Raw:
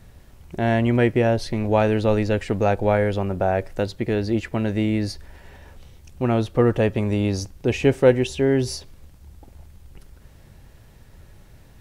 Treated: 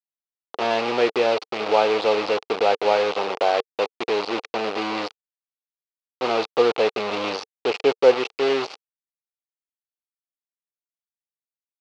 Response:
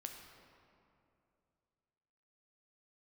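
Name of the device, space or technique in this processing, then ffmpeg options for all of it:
hand-held game console: -af "acrusher=bits=3:mix=0:aa=0.000001,highpass=450,equalizer=frequency=450:width_type=q:width=4:gain=8,equalizer=frequency=810:width_type=q:width=4:gain=6,equalizer=frequency=1200:width_type=q:width=4:gain=4,equalizer=frequency=1700:width_type=q:width=4:gain=-5,equalizer=frequency=2600:width_type=q:width=4:gain=4,equalizer=frequency=4400:width_type=q:width=4:gain=3,lowpass=frequency=4700:width=0.5412,lowpass=frequency=4700:width=1.3066,volume=-1.5dB"

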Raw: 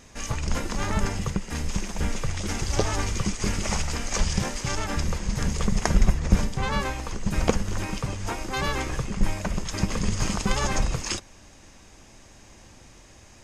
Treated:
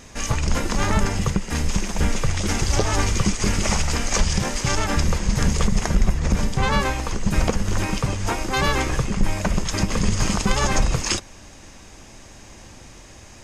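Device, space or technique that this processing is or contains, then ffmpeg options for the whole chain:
soft clipper into limiter: -af "asoftclip=type=tanh:threshold=-6dB,alimiter=limit=-14.5dB:level=0:latency=1:release=178,volume=6.5dB"

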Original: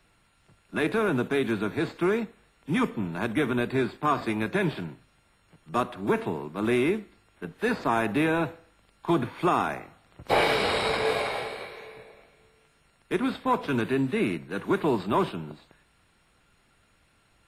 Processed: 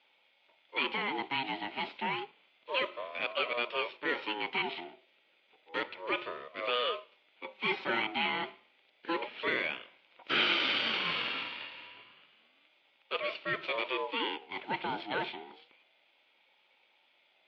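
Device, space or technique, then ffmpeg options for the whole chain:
voice changer toy: -filter_complex "[0:a]equalizer=frequency=5900:width=0.31:gain=4.5,bandreject=frequency=50:width_type=h:width=6,bandreject=frequency=100:width_type=h:width=6,bandreject=frequency=150:width_type=h:width=6,aeval=exprs='val(0)*sin(2*PI*690*n/s+690*0.25/0.3*sin(2*PI*0.3*n/s))':channel_layout=same,highpass=400,equalizer=frequency=440:width_type=q:width=4:gain=-4,equalizer=frequency=720:width_type=q:width=4:gain=-7,equalizer=frequency=1100:width_type=q:width=4:gain=-10,equalizer=frequency=1700:width_type=q:width=4:gain=-8,equalizer=frequency=2400:width_type=q:width=4:gain=6,equalizer=frequency=3400:width_type=q:width=4:gain=4,lowpass=frequency=3600:width=0.5412,lowpass=frequency=3600:width=1.3066,asettb=1/sr,asplit=3[link_01][link_02][link_03];[link_01]atrim=end=7.444[link_04];[link_02]atrim=start=7.44:end=8.02,asetpts=PTS-STARTPTS,afade=type=in:duration=0.004:curve=qsin,afade=type=out:start_time=0.576:duration=0.004:curve=qsin,aecho=1:1:5.3:0.7,atrim=end_sample=25578[link_05];[link_03]atrim=start=8.016[link_06];[link_04][link_05]acrossfade=duration=0.004:curve1=hsin:curve2=qsin[link_07];[link_07][link_06]acrossfade=duration=0.004:curve1=qsin:curve2=hsin,volume=-1dB"

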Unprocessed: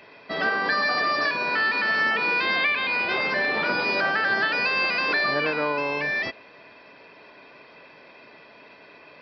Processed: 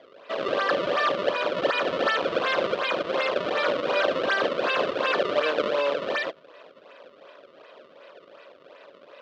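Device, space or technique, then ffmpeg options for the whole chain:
circuit-bent sampling toy: -af "acrusher=samples=31:mix=1:aa=0.000001:lfo=1:lforange=49.6:lforate=2.7,highpass=440,equalizer=frequency=550:width_type=q:width=4:gain=10,equalizer=frequency=830:width_type=q:width=4:gain=-6,equalizer=frequency=1200:width_type=q:width=4:gain=4,equalizer=frequency=2100:width_type=q:width=4:gain=-4,equalizer=frequency=3100:width_type=q:width=4:gain=3,lowpass=frequency=4000:width=0.5412,lowpass=frequency=4000:width=1.3066"

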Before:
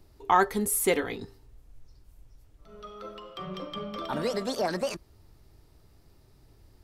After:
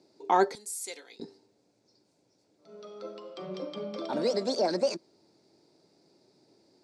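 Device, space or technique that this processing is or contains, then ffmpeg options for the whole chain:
television speaker: -filter_complex "[0:a]highpass=frequency=190:width=0.5412,highpass=frequency=190:width=1.3066,equalizer=frequency=340:width_type=q:width=4:gain=4,equalizer=frequency=550:width_type=q:width=4:gain=4,equalizer=frequency=1200:width_type=q:width=4:gain=-10,equalizer=frequency=1800:width_type=q:width=4:gain=-7,equalizer=frequency=3000:width_type=q:width=4:gain=-9,equalizer=frequency=4600:width_type=q:width=4:gain=6,lowpass=frequency=7700:width=0.5412,lowpass=frequency=7700:width=1.3066,asettb=1/sr,asplit=3[link_01][link_02][link_03];[link_01]atrim=end=0.554[link_04];[link_02]atrim=start=0.55:end=1.2,asetpts=PTS-STARTPTS,afade=type=in:duration=0.004:curve=qsin,afade=type=out:start_time=0.646:duration=0.004:curve=qsin,aderivative[link_05];[link_03]atrim=start=1.196[link_06];[link_04][link_05]acrossfade=duration=0.004:curve1=hsin:curve2=qsin[link_07];[link_07][link_06]acrossfade=duration=0.004:curve1=qsin:curve2=hsin"

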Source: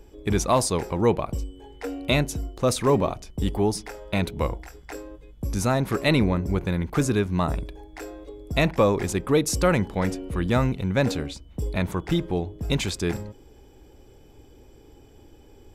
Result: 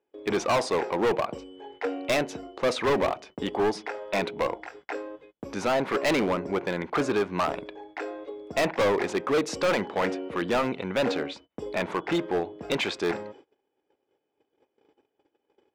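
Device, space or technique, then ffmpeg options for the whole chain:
walkie-talkie: -af "highpass=410,lowpass=2800,asoftclip=type=hard:threshold=-26dB,agate=range=-27dB:threshold=-54dB:ratio=16:detection=peak,volume=6dB"

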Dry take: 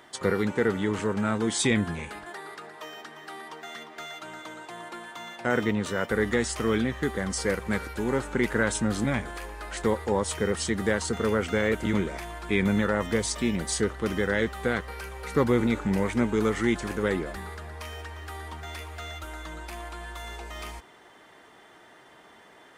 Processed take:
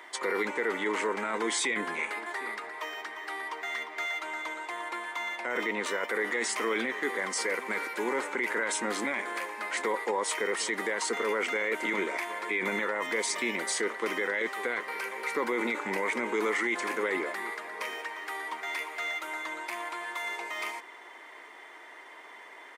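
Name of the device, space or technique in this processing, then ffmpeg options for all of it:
laptop speaker: -filter_complex "[0:a]highpass=frequency=310:width=0.5412,highpass=frequency=310:width=1.3066,equalizer=frequency=1000:width_type=o:width=0.26:gain=8.5,equalizer=frequency=2100:width_type=o:width=0.41:gain=11.5,asplit=2[link_01][link_02];[link_02]adelay=758,volume=-20dB,highshelf=frequency=4000:gain=-17.1[link_03];[link_01][link_03]amix=inputs=2:normalize=0,alimiter=limit=-20.5dB:level=0:latency=1:release=17"

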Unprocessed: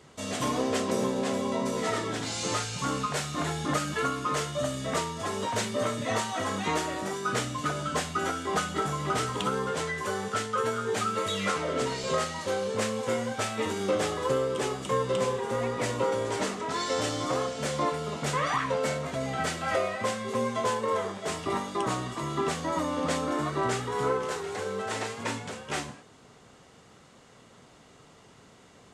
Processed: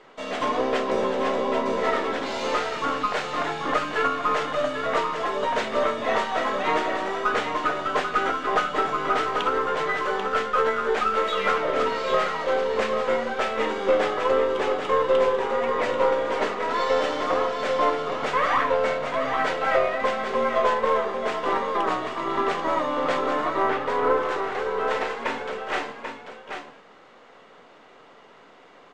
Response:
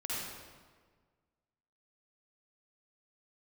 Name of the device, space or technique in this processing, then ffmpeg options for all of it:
crystal radio: -filter_complex "[0:a]asettb=1/sr,asplit=3[link_01][link_02][link_03];[link_01]atrim=end=23.624[link_04];[link_02]atrim=start=23.62:end=24.18,asetpts=PTS-STARTPTS,afade=type=in:duration=0.004:curve=qsin,afade=type=out:start_time=0.556:duration=0.004:curve=qsin,lowpass=3000[link_05];[link_03]atrim=start=24.176[link_06];[link_04][link_05]acrossfade=duration=0.004:curve1=hsin:curve2=qsin[link_07];[link_07][link_06]acrossfade=duration=0.004:curve1=qsin:curve2=hsin,highpass=360,lowpass=2700,bandreject=frequency=50:width_type=h:width=6,bandreject=frequency=100:width_type=h:width=6,bandreject=frequency=150:width_type=h:width=6,bandreject=frequency=200:width_type=h:width=6,bandreject=frequency=250:width_type=h:width=6,bandreject=frequency=300:width_type=h:width=6,bandreject=frequency=350:width_type=h:width=6,bandreject=frequency=400:width_type=h:width=6,aeval=exprs='if(lt(val(0),0),0.708*val(0),val(0))':channel_layout=same,aecho=1:1:789:0.447,volume=8dB"

